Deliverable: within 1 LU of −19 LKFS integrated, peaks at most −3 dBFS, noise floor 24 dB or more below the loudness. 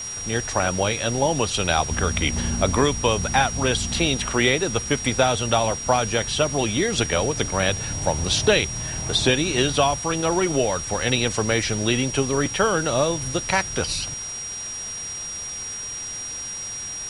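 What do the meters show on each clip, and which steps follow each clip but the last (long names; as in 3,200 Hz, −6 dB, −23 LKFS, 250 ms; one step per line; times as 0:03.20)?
interfering tone 5,700 Hz; level of the tone −30 dBFS; background noise floor −32 dBFS; target noise floor −46 dBFS; integrated loudness −22.0 LKFS; sample peak −4.0 dBFS; target loudness −19.0 LKFS
→ notch filter 5,700 Hz, Q 30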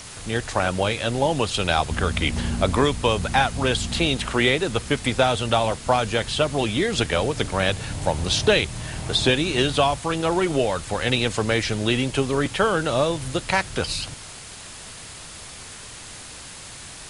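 interfering tone none found; background noise floor −40 dBFS; target noise floor −47 dBFS
→ broadband denoise 7 dB, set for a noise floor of −40 dBFS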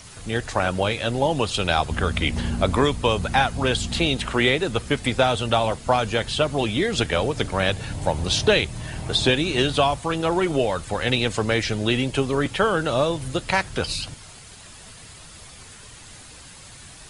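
background noise floor −44 dBFS; target noise floor −47 dBFS
→ broadband denoise 6 dB, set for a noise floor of −44 dBFS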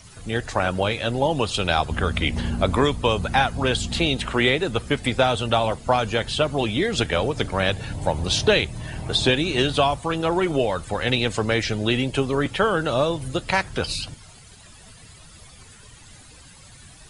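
background noise floor −47 dBFS; integrated loudness −22.5 LKFS; sample peak −4.5 dBFS; target loudness −19.0 LKFS
→ level +3.5 dB
brickwall limiter −3 dBFS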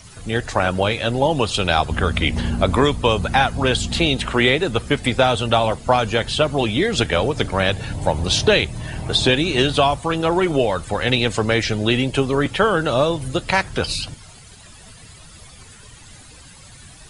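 integrated loudness −19.0 LKFS; sample peak −3.0 dBFS; background noise floor −44 dBFS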